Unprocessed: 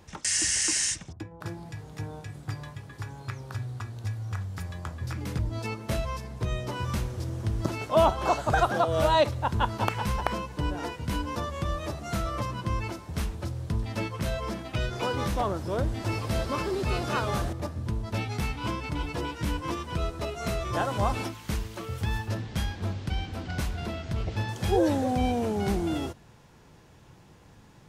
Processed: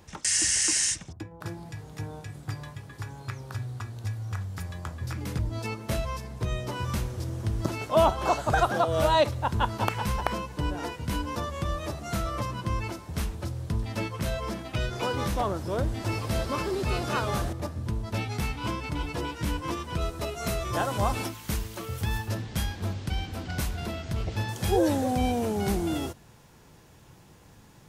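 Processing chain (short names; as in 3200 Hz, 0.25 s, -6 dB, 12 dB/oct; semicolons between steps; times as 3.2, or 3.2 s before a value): high shelf 8600 Hz +4.5 dB, from 20.01 s +11.5 dB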